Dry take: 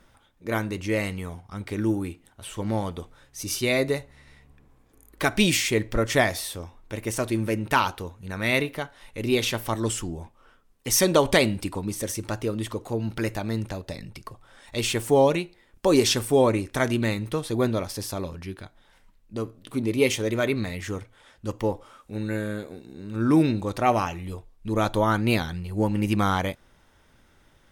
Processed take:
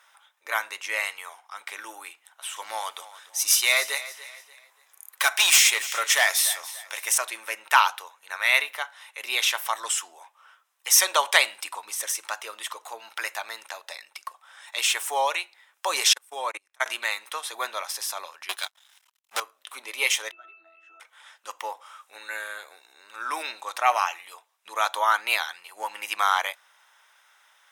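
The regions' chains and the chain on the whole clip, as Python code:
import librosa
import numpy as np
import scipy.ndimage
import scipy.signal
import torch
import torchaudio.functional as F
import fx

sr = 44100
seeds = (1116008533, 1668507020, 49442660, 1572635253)

y = fx.chain(x, sr, fx.high_shelf(hz=3100.0, db=7.5),
    fx.overload_stage(gain_db=16.0),
    fx.echo_feedback(ms=290, feedback_pct=34, wet_db=-16.0), at=(2.56, 7.18))
y = fx.chain(y, sr, fx.peak_eq(hz=170.0, db=4.0, octaves=2.4),
    fx.level_steps(step_db=21),
    fx.upward_expand(threshold_db=-32.0, expansion=2.5), at=(16.13, 16.86))
y = fx.chain(y, sr, fx.band_shelf(hz=6000.0, db=9.5, octaves=2.6),
    fx.leveller(passes=5),
    fx.upward_expand(threshold_db=-33.0, expansion=2.5), at=(18.49, 19.4))
y = fx.chain(y, sr, fx.octave_resonator(note='E', decay_s=0.39),
    fx.band_squash(depth_pct=100), at=(20.31, 21.0))
y = scipy.signal.sosfilt(scipy.signal.butter(4, 850.0, 'highpass', fs=sr, output='sos'), y)
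y = fx.notch(y, sr, hz=4500.0, q=9.8)
y = F.gain(torch.from_numpy(y), 5.0).numpy()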